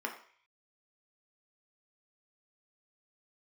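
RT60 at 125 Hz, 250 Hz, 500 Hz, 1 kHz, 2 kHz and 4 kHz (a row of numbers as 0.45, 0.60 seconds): 0.60, 0.35, 0.45, 0.50, 0.65, 0.60 seconds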